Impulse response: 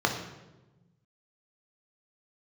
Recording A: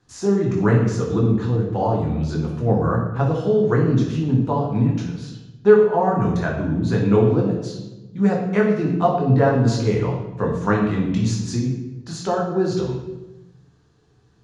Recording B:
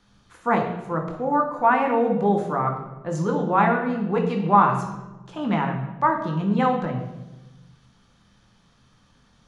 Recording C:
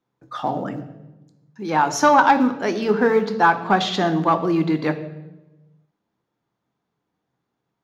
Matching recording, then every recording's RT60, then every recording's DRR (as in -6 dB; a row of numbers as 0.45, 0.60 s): B; 1.1, 1.1, 1.1 s; -2.0, 2.0, 9.0 dB